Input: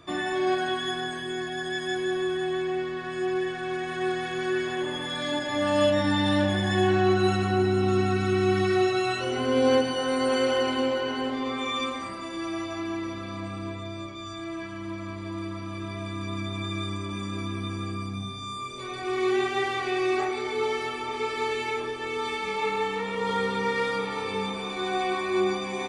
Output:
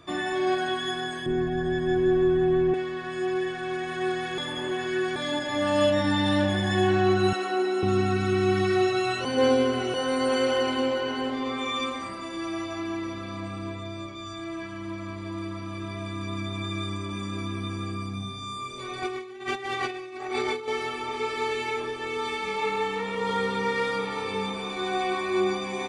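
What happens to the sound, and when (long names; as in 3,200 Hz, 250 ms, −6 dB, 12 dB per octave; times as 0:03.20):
0:01.26–0:02.74: spectral tilt −4.5 dB per octave
0:04.38–0:05.16: reverse
0:07.33–0:07.83: high-pass filter 320 Hz 24 dB per octave
0:09.25–0:09.94: reverse
0:19.02–0:20.68: compressor whose output falls as the input rises −31 dBFS, ratio −0.5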